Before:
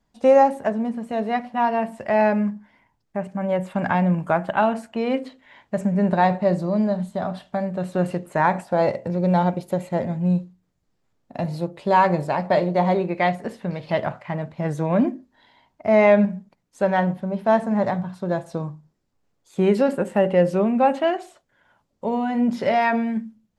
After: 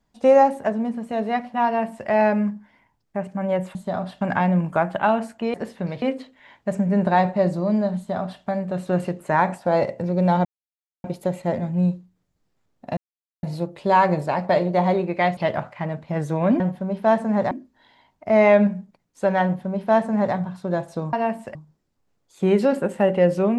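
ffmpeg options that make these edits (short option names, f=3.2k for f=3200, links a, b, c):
-filter_complex "[0:a]asplit=12[a][b][c][d][e][f][g][h][i][j][k][l];[a]atrim=end=3.752[m];[b]atrim=start=7.028:end=7.492[n];[c]atrim=start=3.748:end=5.082[o];[d]atrim=start=13.378:end=13.862[p];[e]atrim=start=5.078:end=9.51,asetpts=PTS-STARTPTS,afade=t=out:st=4.428:d=0.004:c=hsin,apad=pad_dur=0.59[q];[f]atrim=start=9.51:end=11.44,asetpts=PTS-STARTPTS,afade=t=in:d=0.004:c=hsin,afade=t=out:st=1.926:d=0.004:c=hsin,apad=pad_dur=0.46[r];[g]atrim=start=11.44:end=13.382,asetpts=PTS-STARTPTS,afade=t=in:d=0.004:c=hsin[s];[h]atrim=start=13.858:end=15.092[t];[i]atrim=start=17.018:end=17.932[u];[j]atrim=start=15.088:end=18.712[v];[k]atrim=start=1.658:end=2.082[w];[l]atrim=start=18.708[x];[m][n]acrossfade=d=0.004:c1=hsin:c2=hsin[y];[y][o]acrossfade=d=0.004:c1=hsin:c2=hsin[z];[z][p]acrossfade=d=0.004:c1=hsin:c2=hsin[aa];[q][r][s]concat=n=3:v=0:a=1[ab];[aa][ab]acrossfade=d=0.004:c1=hsin:c2=hsin[ac];[ac][t]acrossfade=d=0.004:c1=hsin:c2=hsin[ad];[ad][u]acrossfade=d=0.004:c1=hsin:c2=hsin[ae];[ae][v]acrossfade=d=0.004:c1=hsin:c2=hsin[af];[af][w]acrossfade=d=0.004:c1=hsin:c2=hsin[ag];[ag][x]acrossfade=d=0.004:c1=hsin:c2=hsin"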